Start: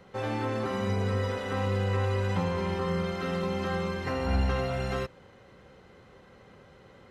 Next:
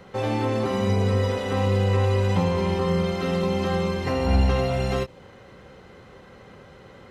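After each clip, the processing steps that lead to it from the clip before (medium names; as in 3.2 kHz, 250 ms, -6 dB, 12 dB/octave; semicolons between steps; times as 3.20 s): dynamic bell 1.5 kHz, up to -7 dB, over -52 dBFS, Q 1.8; endings held to a fixed fall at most 460 dB/s; trim +7 dB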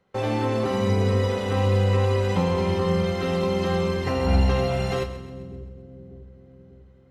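gate with hold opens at -33 dBFS; two-band feedback delay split 440 Hz, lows 594 ms, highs 131 ms, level -13 dB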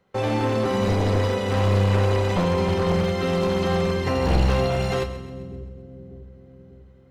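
one-sided wavefolder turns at -18.5 dBFS; trim +2 dB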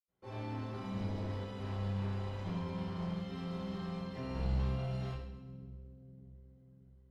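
reverberation RT60 0.65 s, pre-delay 76 ms; trim +3 dB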